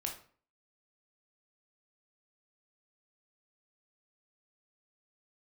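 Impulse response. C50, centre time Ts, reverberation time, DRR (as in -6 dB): 8.0 dB, 22 ms, 0.45 s, 1.0 dB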